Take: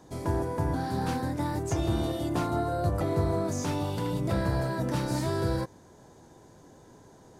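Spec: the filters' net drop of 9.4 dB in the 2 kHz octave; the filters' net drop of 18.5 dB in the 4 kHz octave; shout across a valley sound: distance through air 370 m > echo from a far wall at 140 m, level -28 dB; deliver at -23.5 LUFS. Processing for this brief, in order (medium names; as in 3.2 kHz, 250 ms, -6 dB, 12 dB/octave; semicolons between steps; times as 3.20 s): distance through air 370 m; peaking EQ 2 kHz -7.5 dB; peaking EQ 4 kHz -7.5 dB; echo from a far wall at 140 m, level -28 dB; trim +7.5 dB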